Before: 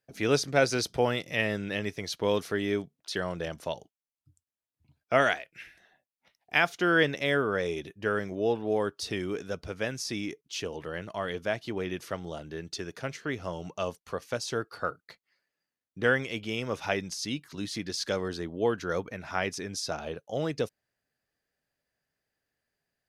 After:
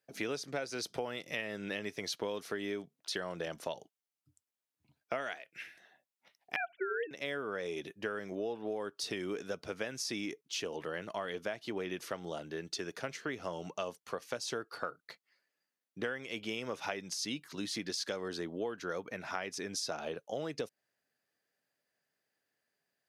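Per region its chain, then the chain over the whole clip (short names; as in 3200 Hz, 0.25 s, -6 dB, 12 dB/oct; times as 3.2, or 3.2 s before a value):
6.56–7.11 sine-wave speech + low shelf 490 Hz +5 dB + notches 50/100/150/200/250/300/350/400 Hz
whole clip: Bessel high-pass 220 Hz, order 2; compressor 16:1, threshold -33 dBFS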